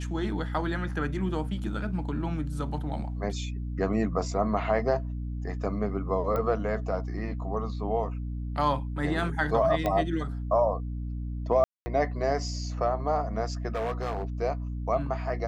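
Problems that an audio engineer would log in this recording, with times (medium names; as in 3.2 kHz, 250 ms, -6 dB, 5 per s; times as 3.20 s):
hum 60 Hz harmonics 5 -33 dBFS
6.36 s: pop -19 dBFS
9.86 s: pop -15 dBFS
11.64–11.86 s: dropout 220 ms
13.72–14.25 s: clipped -26.5 dBFS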